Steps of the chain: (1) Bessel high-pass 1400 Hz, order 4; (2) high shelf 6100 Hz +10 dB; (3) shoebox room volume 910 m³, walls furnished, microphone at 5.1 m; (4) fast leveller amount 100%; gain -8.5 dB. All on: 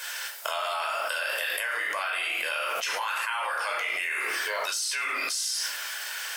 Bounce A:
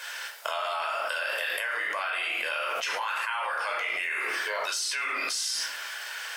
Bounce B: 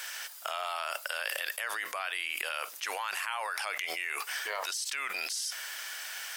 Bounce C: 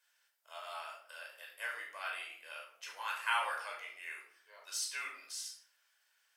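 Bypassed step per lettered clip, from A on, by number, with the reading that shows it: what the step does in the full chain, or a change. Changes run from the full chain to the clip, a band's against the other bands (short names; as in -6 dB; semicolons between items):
2, 8 kHz band -2.5 dB; 3, momentary loudness spread change +1 LU; 4, crest factor change +8.0 dB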